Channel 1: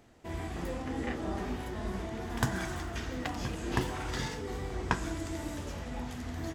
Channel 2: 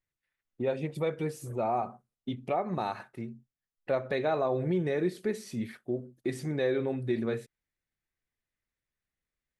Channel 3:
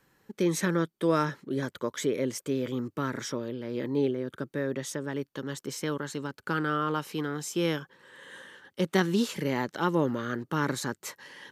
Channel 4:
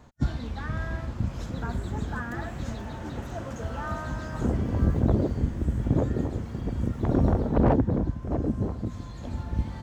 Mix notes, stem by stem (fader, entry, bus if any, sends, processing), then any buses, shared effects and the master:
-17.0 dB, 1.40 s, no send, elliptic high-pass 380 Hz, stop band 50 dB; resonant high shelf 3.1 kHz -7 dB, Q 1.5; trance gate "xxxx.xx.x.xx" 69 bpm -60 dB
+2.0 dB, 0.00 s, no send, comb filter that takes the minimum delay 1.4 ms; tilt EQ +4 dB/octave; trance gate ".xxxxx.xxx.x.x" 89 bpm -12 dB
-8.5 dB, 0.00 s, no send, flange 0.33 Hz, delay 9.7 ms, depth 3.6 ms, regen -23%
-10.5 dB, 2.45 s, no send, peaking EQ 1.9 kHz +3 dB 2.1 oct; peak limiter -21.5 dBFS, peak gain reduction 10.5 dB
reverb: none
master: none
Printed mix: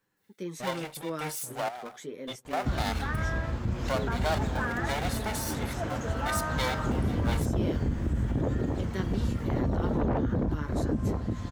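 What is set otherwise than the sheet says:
stem 1 -17.0 dB -> -24.5 dB; stem 4 -10.5 dB -> +1.5 dB

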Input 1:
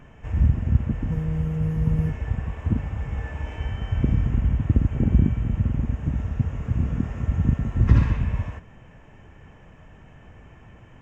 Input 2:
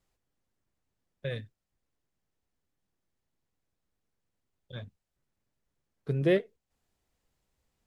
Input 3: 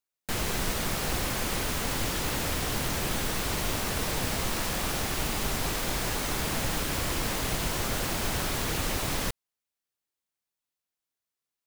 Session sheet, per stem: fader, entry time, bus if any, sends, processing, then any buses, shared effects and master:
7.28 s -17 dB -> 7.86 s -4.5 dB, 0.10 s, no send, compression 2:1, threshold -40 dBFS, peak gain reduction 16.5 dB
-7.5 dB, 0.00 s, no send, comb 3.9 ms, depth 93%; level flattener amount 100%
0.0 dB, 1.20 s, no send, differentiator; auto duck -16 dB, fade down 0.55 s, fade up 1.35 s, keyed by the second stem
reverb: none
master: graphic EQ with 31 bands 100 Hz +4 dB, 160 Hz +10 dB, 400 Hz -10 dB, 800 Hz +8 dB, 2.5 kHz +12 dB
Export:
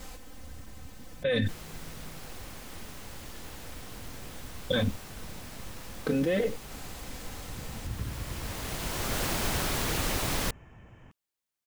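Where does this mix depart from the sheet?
stem 3: missing differentiator; master: missing graphic EQ with 31 bands 100 Hz +4 dB, 160 Hz +10 dB, 400 Hz -10 dB, 800 Hz +8 dB, 2.5 kHz +12 dB

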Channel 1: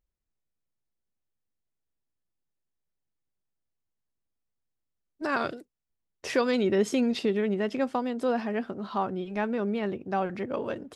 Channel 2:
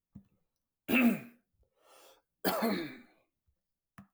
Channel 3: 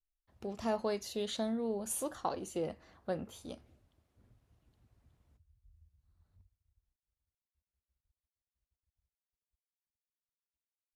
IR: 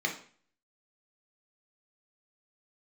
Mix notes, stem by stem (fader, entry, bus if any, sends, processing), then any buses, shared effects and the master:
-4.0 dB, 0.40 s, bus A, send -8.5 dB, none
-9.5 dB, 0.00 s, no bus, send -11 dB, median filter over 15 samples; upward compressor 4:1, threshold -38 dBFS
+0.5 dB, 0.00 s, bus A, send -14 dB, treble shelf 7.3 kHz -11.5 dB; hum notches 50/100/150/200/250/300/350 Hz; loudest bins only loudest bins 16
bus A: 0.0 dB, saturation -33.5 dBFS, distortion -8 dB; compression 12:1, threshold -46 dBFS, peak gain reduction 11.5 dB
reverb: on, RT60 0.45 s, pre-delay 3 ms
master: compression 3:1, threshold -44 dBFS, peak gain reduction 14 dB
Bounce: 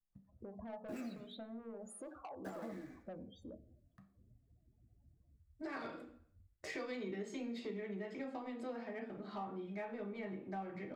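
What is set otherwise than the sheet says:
stem 2: missing upward compressor 4:1, threshold -38 dBFS; stem 3: send -14 dB -> -21 dB

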